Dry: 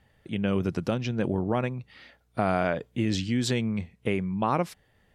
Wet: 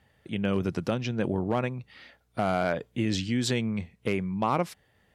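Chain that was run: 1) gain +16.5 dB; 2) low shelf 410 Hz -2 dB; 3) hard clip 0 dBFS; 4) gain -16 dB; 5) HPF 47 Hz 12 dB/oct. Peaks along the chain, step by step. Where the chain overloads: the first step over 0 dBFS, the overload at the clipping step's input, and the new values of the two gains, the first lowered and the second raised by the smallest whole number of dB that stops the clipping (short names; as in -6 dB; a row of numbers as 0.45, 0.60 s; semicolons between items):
+6.0, +5.5, 0.0, -16.0, -14.0 dBFS; step 1, 5.5 dB; step 1 +10.5 dB, step 4 -10 dB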